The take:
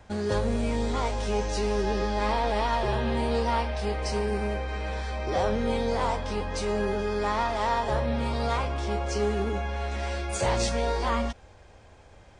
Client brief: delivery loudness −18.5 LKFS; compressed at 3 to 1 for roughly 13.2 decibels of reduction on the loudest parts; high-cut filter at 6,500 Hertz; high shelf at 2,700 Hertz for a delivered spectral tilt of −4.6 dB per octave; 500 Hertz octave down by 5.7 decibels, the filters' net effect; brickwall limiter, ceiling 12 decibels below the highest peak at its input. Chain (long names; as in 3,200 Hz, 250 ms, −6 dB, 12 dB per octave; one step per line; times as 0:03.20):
low-pass filter 6,500 Hz
parametric band 500 Hz −7.5 dB
high-shelf EQ 2,700 Hz +7 dB
downward compressor 3 to 1, threshold −42 dBFS
level +29 dB
brickwall limiter −9.5 dBFS